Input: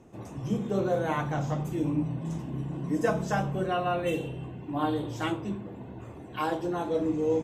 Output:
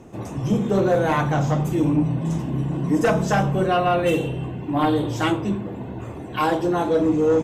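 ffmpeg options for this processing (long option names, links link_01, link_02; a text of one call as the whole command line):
ffmpeg -i in.wav -af "aeval=exprs='0.237*sin(PI/2*2*val(0)/0.237)':channel_layout=same" out.wav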